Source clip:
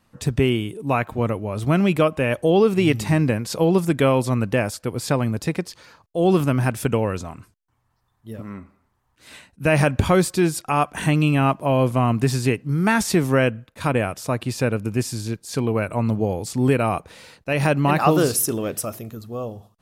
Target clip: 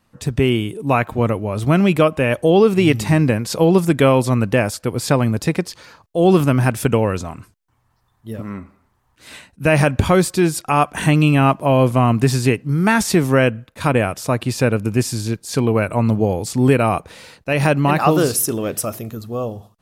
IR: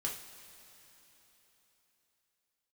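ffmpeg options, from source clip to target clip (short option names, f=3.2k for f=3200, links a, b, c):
-af "dynaudnorm=f=290:g=3:m=5.5dB"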